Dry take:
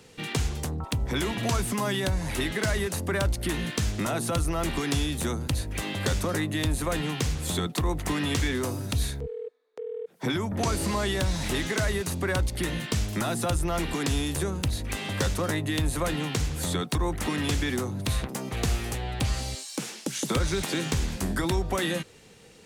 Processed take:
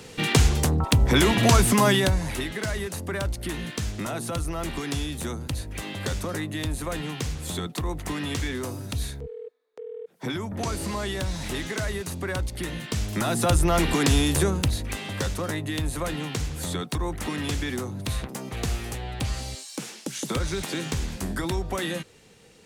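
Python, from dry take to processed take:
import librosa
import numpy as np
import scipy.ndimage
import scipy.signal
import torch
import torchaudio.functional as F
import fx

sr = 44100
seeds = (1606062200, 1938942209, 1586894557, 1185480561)

y = fx.gain(x, sr, db=fx.line((1.88, 9.0), (2.46, -2.5), (12.83, -2.5), (13.57, 6.5), (14.46, 6.5), (15.05, -1.5)))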